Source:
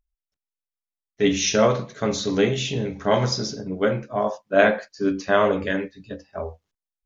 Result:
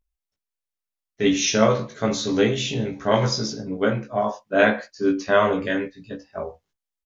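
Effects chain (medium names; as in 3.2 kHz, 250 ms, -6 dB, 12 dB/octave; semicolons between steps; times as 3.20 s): doubling 18 ms -3 dB; trim -1 dB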